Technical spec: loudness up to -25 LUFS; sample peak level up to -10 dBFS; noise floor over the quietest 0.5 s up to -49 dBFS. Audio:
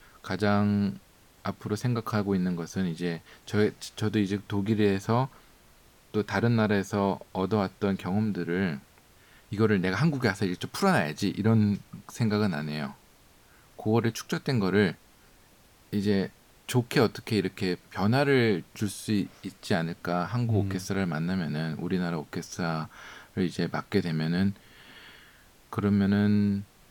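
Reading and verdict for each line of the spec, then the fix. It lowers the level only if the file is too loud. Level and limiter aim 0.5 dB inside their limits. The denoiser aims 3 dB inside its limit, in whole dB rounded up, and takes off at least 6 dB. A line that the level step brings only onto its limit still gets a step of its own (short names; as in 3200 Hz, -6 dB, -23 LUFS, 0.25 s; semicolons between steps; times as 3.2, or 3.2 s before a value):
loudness -28.0 LUFS: OK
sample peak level -10.5 dBFS: OK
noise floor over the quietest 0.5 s -58 dBFS: OK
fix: none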